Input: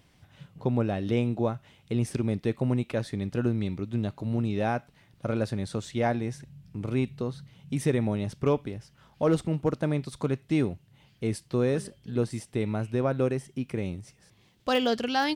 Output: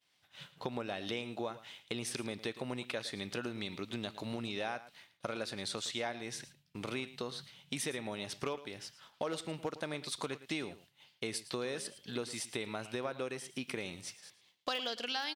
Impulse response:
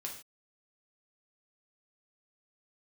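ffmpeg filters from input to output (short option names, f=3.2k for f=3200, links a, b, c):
-filter_complex "[0:a]highpass=f=1.2k:p=1,agate=range=-33dB:threshold=-57dB:ratio=3:detection=peak,equalizer=f=3.8k:t=o:w=0.95:g=5.5,acompressor=threshold=-43dB:ratio=5,asplit=2[a][b];[b]aecho=0:1:111:0.168[c];[a][c]amix=inputs=2:normalize=0,volume=7.5dB"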